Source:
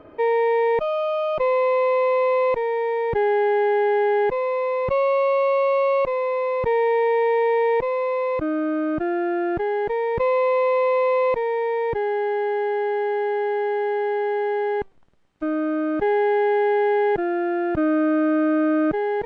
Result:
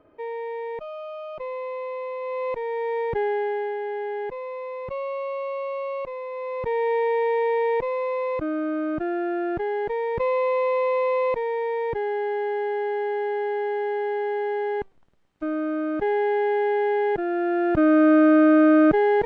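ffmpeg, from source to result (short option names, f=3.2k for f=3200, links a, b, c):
-af "volume=11.5dB,afade=t=in:st=2.2:d=0.79:silence=0.334965,afade=t=out:st=2.99:d=0.79:silence=0.421697,afade=t=in:st=6.3:d=0.63:silence=0.446684,afade=t=in:st=17.22:d=0.9:silence=0.446684"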